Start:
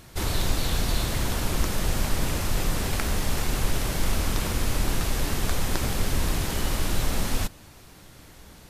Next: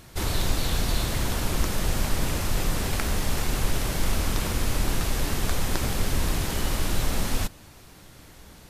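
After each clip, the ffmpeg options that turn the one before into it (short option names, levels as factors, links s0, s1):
-af anull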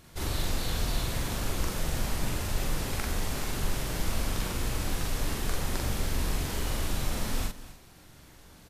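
-filter_complex "[0:a]asplit=2[s0][s1];[s1]adelay=43,volume=0.794[s2];[s0][s2]amix=inputs=2:normalize=0,aecho=1:1:249:0.158,volume=0.447"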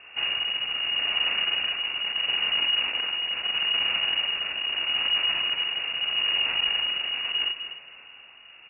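-af "aeval=exprs='0.178*sin(PI/2*3.16*val(0)/0.178)':c=same,lowpass=f=2500:t=q:w=0.5098,lowpass=f=2500:t=q:w=0.6013,lowpass=f=2500:t=q:w=0.9,lowpass=f=2500:t=q:w=2.563,afreqshift=-2900,tremolo=f=0.77:d=0.43,volume=0.501"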